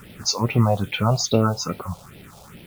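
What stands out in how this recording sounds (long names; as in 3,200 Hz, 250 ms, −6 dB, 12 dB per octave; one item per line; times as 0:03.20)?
a quantiser's noise floor 8 bits, dither none
phaser sweep stages 4, 2.4 Hz, lowest notch 290–1,200 Hz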